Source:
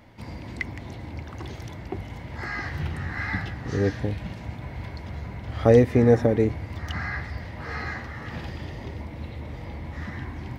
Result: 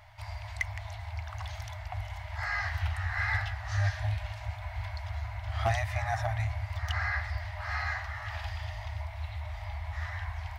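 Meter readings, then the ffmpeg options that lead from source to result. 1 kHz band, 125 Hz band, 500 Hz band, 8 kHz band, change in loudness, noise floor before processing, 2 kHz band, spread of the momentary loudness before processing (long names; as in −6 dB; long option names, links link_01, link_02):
−0.5 dB, −4.5 dB, −18.0 dB, can't be measured, −7.0 dB, −40 dBFS, 0.0 dB, 19 LU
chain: -af "afftfilt=real='re*(1-between(b*sr/4096,110,600))':imag='im*(1-between(b*sr/4096,110,600))':win_size=4096:overlap=0.75,asoftclip=type=hard:threshold=-20.5dB"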